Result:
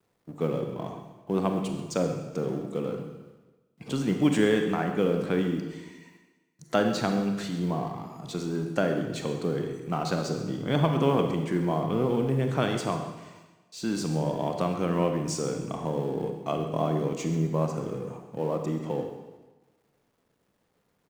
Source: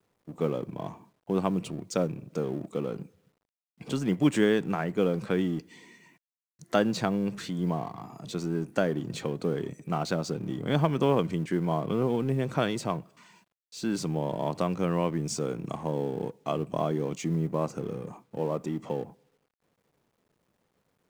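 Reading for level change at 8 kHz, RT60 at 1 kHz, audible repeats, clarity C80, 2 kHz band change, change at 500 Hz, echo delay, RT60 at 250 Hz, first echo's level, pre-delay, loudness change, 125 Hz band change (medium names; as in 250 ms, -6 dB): +1.5 dB, 1.2 s, 1, 7.0 dB, +1.5 dB, +1.5 dB, 134 ms, 1.2 s, -15.5 dB, 23 ms, +1.5 dB, +1.5 dB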